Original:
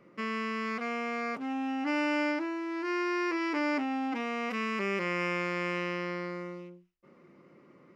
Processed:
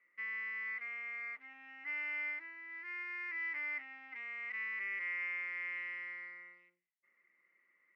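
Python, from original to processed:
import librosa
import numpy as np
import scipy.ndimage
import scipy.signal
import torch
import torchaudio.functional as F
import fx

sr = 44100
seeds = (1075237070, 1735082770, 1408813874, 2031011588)

y = fx.bandpass_q(x, sr, hz=2000.0, q=12.0)
y = F.gain(torch.from_numpy(y), 3.0).numpy()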